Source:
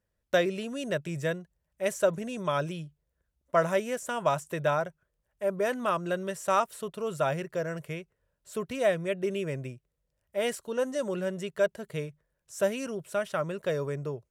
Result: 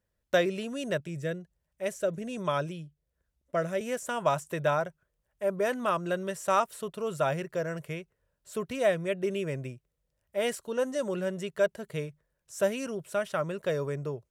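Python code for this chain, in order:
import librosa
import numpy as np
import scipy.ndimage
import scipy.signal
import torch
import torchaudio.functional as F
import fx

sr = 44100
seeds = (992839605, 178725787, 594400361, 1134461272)

y = fx.rotary(x, sr, hz=1.2, at=(1.0, 3.81))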